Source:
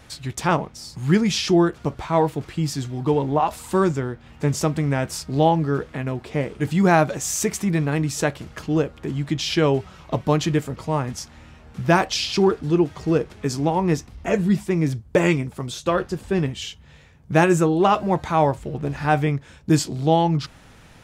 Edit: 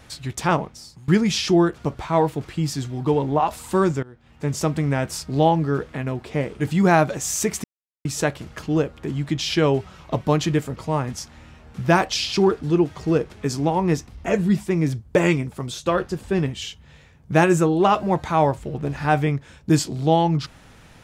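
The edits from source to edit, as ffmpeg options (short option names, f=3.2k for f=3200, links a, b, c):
-filter_complex "[0:a]asplit=5[a][b][c][d][e];[a]atrim=end=1.08,asetpts=PTS-STARTPTS,afade=t=out:st=0.66:d=0.42:silence=0.0749894[f];[b]atrim=start=1.08:end=4.03,asetpts=PTS-STARTPTS,afade=t=in:d=0.004:c=hsin:silence=0.0749894,afade=t=out:st=2.946:d=0.004:c=hsin:silence=0.0891251[g];[c]atrim=start=4.03:end=7.64,asetpts=PTS-STARTPTS,afade=t=in:d=0.68:silence=0.0891251,afade=t=out:st=3.606:d=0.004:c=hsin[h];[d]atrim=start=7.64:end=8.05,asetpts=PTS-STARTPTS,volume=0[i];[e]atrim=start=8.05,asetpts=PTS-STARTPTS,afade=t=in:d=0.004:c=hsin[j];[f][g][h][i][j]concat=n=5:v=0:a=1"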